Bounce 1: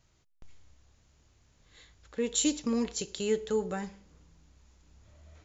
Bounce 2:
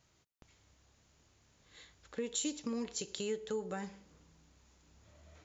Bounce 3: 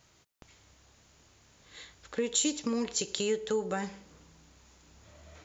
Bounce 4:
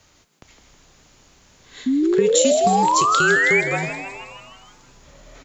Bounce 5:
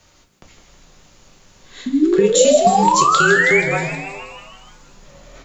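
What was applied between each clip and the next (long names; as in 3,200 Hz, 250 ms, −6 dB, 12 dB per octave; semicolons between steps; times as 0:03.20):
downward compressor 2.5 to 1, threshold −37 dBFS, peak gain reduction 9.5 dB; high-pass filter 130 Hz 6 dB per octave
low-shelf EQ 330 Hz −3.5 dB; level +8.5 dB
frequency shifter −39 Hz; sound drawn into the spectrogram rise, 0:01.86–0:03.61, 250–2,400 Hz −26 dBFS; echo with shifted repeats 159 ms, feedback 61%, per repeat +120 Hz, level −10 dB; level +8 dB
rectangular room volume 130 cubic metres, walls furnished, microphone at 0.99 metres; level +1 dB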